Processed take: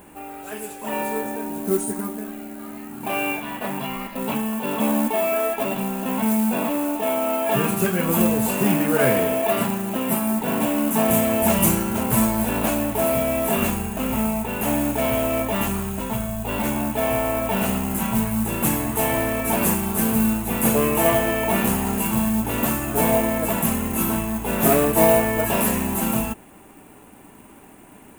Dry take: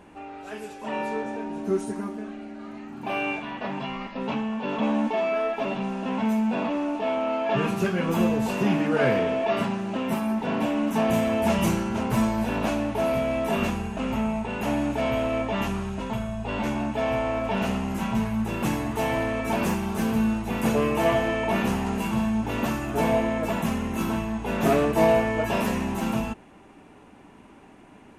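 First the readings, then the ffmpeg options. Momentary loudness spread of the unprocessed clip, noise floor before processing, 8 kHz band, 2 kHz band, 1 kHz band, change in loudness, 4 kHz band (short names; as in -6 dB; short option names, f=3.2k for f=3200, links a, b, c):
9 LU, -50 dBFS, +15.0 dB, +3.0 dB, +3.0 dB, +4.5 dB, +3.0 dB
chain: -af "acrusher=bits=6:mode=log:mix=0:aa=0.000001,aexciter=amount=7.4:drive=2.2:freq=7.7k,volume=3dB"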